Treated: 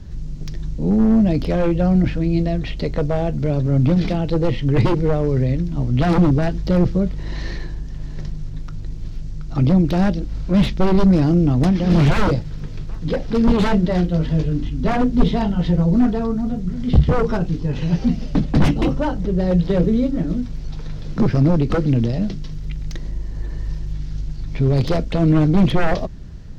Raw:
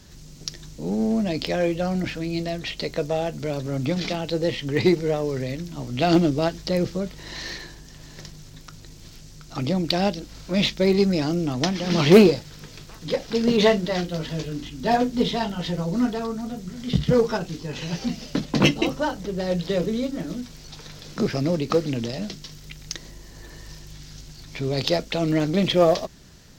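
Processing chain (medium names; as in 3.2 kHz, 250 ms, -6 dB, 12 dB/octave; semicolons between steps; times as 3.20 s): wavefolder -17.5 dBFS; RIAA curve playback; trim +1.5 dB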